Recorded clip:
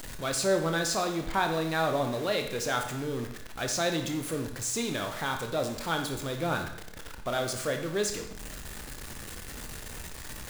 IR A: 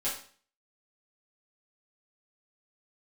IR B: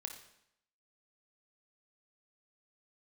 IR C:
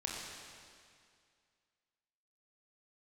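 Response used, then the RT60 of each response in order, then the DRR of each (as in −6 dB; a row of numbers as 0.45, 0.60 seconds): B; 0.45, 0.75, 2.2 seconds; −10.0, 4.0, −3.0 decibels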